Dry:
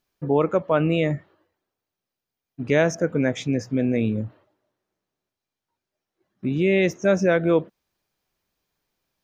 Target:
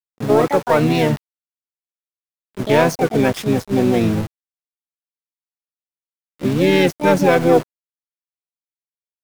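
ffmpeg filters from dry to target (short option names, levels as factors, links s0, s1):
-filter_complex "[0:a]acontrast=89,aeval=exprs='val(0)*gte(abs(val(0)),0.0708)':c=same,asplit=3[s0][s1][s2];[s1]asetrate=35002,aresample=44100,atempo=1.25992,volume=0.398[s3];[s2]asetrate=66075,aresample=44100,atempo=0.66742,volume=0.562[s4];[s0][s3][s4]amix=inputs=3:normalize=0,volume=0.75"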